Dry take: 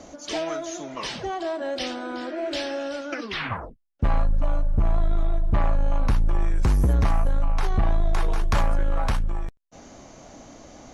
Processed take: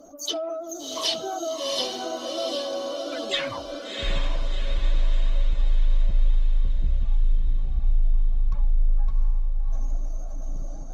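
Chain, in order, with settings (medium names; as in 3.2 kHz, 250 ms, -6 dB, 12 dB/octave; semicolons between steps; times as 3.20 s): spectral contrast enhancement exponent 2.3; resonant high shelf 2.7 kHz +10.5 dB, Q 1.5; hum notches 50/100/150/200/250 Hz; harmony voices +12 st -17 dB; peaking EQ 91 Hz -13 dB 2.3 oct; echo that smears into a reverb 707 ms, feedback 53%, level -3 dB; Opus 20 kbps 48 kHz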